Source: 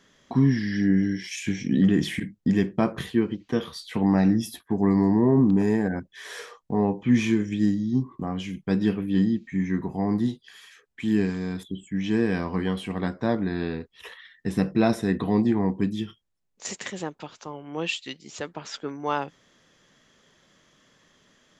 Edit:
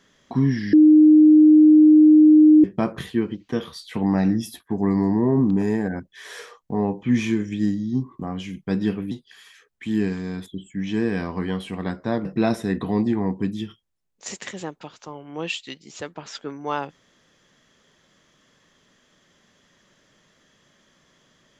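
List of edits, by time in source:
0.73–2.64 s: bleep 307 Hz -8 dBFS
9.11–10.28 s: delete
13.42–14.64 s: delete

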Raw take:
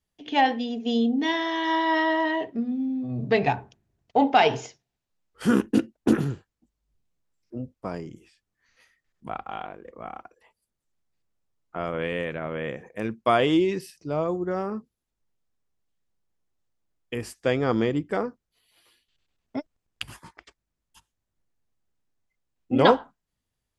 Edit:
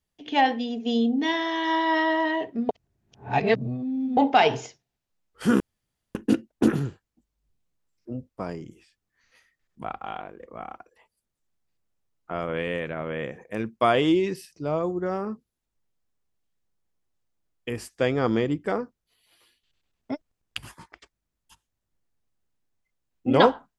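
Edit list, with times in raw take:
2.69–4.17 s: reverse
5.60 s: insert room tone 0.55 s

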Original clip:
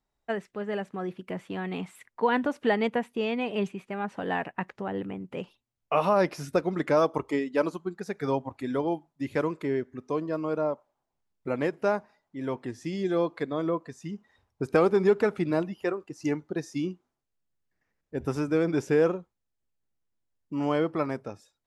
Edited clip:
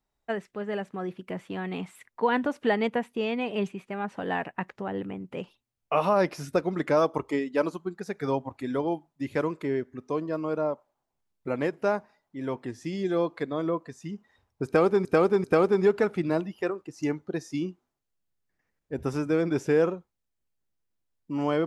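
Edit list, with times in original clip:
14.66–15.05 s: loop, 3 plays

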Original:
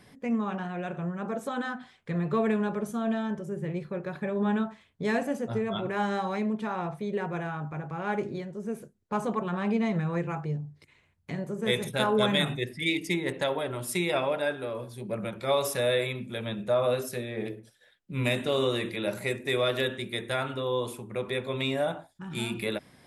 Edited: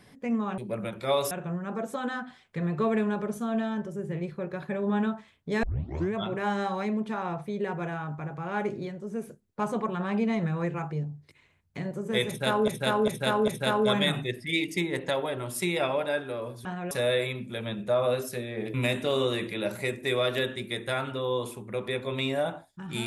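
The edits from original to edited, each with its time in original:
0.58–0.84 s: swap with 14.98–15.71 s
5.16 s: tape start 0.51 s
11.81–12.21 s: loop, 4 plays
17.54–18.16 s: delete

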